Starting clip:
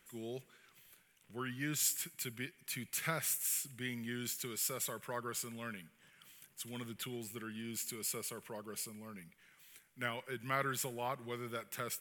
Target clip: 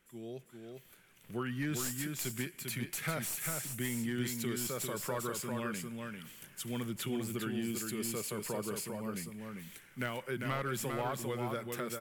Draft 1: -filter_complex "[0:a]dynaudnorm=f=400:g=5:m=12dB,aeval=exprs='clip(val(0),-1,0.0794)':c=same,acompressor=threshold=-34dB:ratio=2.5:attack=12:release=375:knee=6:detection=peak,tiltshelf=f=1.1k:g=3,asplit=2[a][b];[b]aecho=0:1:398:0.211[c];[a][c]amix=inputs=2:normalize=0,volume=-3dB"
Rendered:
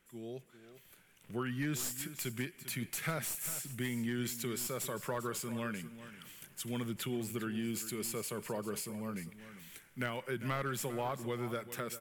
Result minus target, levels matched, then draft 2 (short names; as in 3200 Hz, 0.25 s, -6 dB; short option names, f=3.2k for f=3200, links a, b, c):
echo-to-direct -9 dB
-filter_complex "[0:a]dynaudnorm=f=400:g=5:m=12dB,aeval=exprs='clip(val(0),-1,0.0794)':c=same,acompressor=threshold=-34dB:ratio=2.5:attack=12:release=375:knee=6:detection=peak,tiltshelf=f=1.1k:g=3,asplit=2[a][b];[b]aecho=0:1:398:0.596[c];[a][c]amix=inputs=2:normalize=0,volume=-3dB"